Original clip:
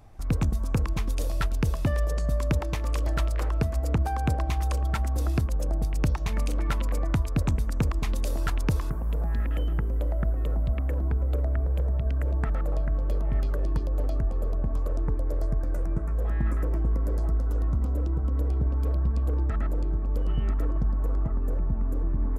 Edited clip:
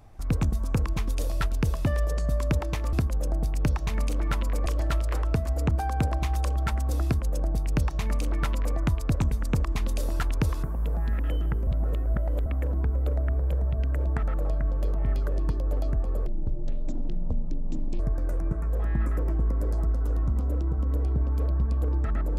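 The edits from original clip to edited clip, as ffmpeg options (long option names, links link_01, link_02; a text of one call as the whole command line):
ffmpeg -i in.wav -filter_complex "[0:a]asplit=7[link_01][link_02][link_03][link_04][link_05][link_06][link_07];[link_01]atrim=end=2.932[link_08];[link_02]atrim=start=5.318:end=7.052[link_09];[link_03]atrim=start=2.928:end=9.942[link_10];[link_04]atrim=start=9.938:end=10.732,asetpts=PTS-STARTPTS,areverse[link_11];[link_05]atrim=start=10.728:end=14.534[link_12];[link_06]atrim=start=14.53:end=15.45,asetpts=PTS-STARTPTS,asetrate=23373,aresample=44100[link_13];[link_07]atrim=start=15.446[link_14];[link_08][link_09]acrossfade=duration=0.004:curve1=hsin:curve2=hsin[link_15];[link_15][link_10]acrossfade=duration=0.004:curve1=hsin:curve2=hsin[link_16];[link_16][link_11]acrossfade=duration=0.004:curve1=hsin:curve2=hsin[link_17];[link_17][link_12]acrossfade=duration=0.004:curve1=hsin:curve2=hsin[link_18];[link_18][link_13]acrossfade=duration=0.004:curve1=hsin:curve2=hsin[link_19];[link_19][link_14]acrossfade=duration=0.004:curve1=hsin:curve2=hsin" out.wav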